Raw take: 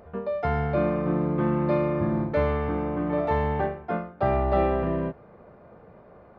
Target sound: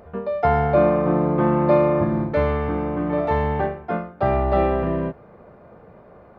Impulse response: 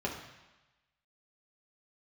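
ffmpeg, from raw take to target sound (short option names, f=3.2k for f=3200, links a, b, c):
-filter_complex "[0:a]asettb=1/sr,asplit=3[a][b][c];[a]atrim=end=0.434[d];[b]atrim=start=0.43:end=2.04,asetpts=PTS-STARTPTS,afade=t=in:d=0.004:c=qsin,afade=t=out:st=1.606:d=0.004:c=qsin,equalizer=f=740:w=0.97:g=7[e];[c]atrim=start=2.036[f];[d][e]acrossfade=d=0.004:c1=hsin:c2=qsin[g];[g][f]acrossfade=d=0.004:c1=qsin:c2=hsin,volume=3.5dB"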